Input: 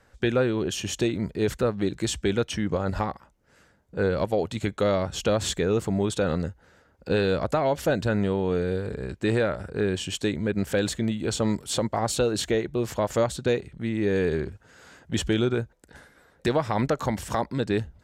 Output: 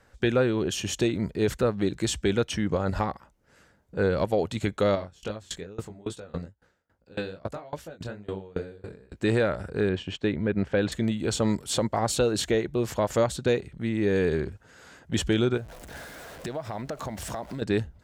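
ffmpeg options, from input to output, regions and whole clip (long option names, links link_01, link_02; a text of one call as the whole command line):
ffmpeg -i in.wav -filter_complex "[0:a]asettb=1/sr,asplit=3[link_01][link_02][link_03];[link_01]atrim=end=4.954[link_04];[link_02]atrim=start=4.95:end=9.16,asetpts=PTS-STARTPTS,afade=type=in:duration=0.004:curve=qsin,afade=type=out:start_time=4.206:duration=0.004:curve=qsin,flanger=delay=18:depth=5.9:speed=2.4,aeval=exprs='val(0)*pow(10,-26*if(lt(mod(3.6*n/s,1),2*abs(3.6)/1000),1-mod(3.6*n/s,1)/(2*abs(3.6)/1000),(mod(3.6*n/s,1)-2*abs(3.6)/1000)/(1-2*abs(3.6)/1000))/20)':channel_layout=same[link_05];[link_03]atrim=start=9.156[link_06];[link_04][link_05]acrossfade=duration=0.004:curve1=hsin:curve2=qsin[link_07];[link_07][link_06]acrossfade=duration=0.004:curve1=qsin:curve2=hsin,asettb=1/sr,asplit=3[link_08][link_09][link_10];[link_08]atrim=end=9.894[link_11];[link_09]atrim=start=9.89:end=10.92,asetpts=PTS-STARTPTS,afade=type=in:duration=0.004:curve=qsin,afade=type=out:start_time=1.026:duration=0.004:curve=qsin,lowpass=2900,agate=range=-7dB:threshold=-37dB:ratio=16:release=100:detection=peak[link_12];[link_10]atrim=start=10.916[link_13];[link_11][link_12]acrossfade=duration=0.004:curve1=hsin:curve2=qsin[link_14];[link_14][link_13]acrossfade=duration=0.004:curve1=qsin:curve2=hsin,asettb=1/sr,asplit=3[link_15][link_16][link_17];[link_15]atrim=end=15.574[link_18];[link_16]atrim=start=15.57:end=17.62,asetpts=PTS-STARTPTS,afade=type=in:duration=0.004:curve=qsin,afade=type=out:start_time=2.046:duration=0.004:curve=qsin,aeval=exprs='val(0)+0.5*0.01*sgn(val(0))':channel_layout=same,equalizer=frequency=660:width=4.9:gain=8.5,acompressor=threshold=-32dB:ratio=4:attack=3.2:release=140:knee=1:detection=peak[link_19];[link_17]atrim=start=17.616[link_20];[link_18][link_19]acrossfade=duration=0.004:curve1=hsin:curve2=qsin[link_21];[link_21][link_20]acrossfade=duration=0.004:curve1=qsin:curve2=hsin" out.wav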